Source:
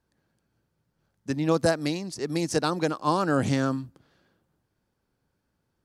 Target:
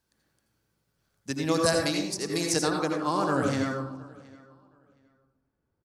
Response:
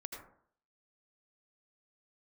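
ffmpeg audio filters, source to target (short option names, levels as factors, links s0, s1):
-filter_complex "[0:a]asetnsamples=n=441:p=0,asendcmd='2.62 highshelf g 2.5;3.74 highshelf g -11',highshelf=f=2100:g=11.5,asplit=2[s0][s1];[s1]adelay=719,lowpass=f=4600:p=1,volume=0.075,asplit=2[s2][s3];[s3]adelay=719,lowpass=f=4600:p=1,volume=0.21[s4];[s0][s2][s4]amix=inputs=3:normalize=0[s5];[1:a]atrim=start_sample=2205[s6];[s5][s6]afir=irnorm=-1:irlink=0"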